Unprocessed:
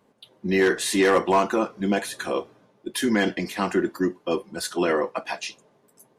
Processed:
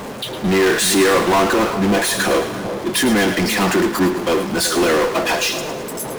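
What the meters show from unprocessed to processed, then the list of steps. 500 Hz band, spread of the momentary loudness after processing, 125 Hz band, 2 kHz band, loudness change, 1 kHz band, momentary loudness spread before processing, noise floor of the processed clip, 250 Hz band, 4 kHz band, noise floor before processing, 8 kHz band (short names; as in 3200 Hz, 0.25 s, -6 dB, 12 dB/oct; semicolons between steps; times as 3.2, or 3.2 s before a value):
+6.5 dB, 10 LU, +9.0 dB, +8.5 dB, +7.5 dB, +7.5 dB, 12 LU, -29 dBFS, +7.0 dB, +12.0 dB, -63 dBFS, +12.5 dB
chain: power-law curve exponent 0.35; split-band echo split 1100 Hz, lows 0.381 s, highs 0.108 s, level -10.5 dB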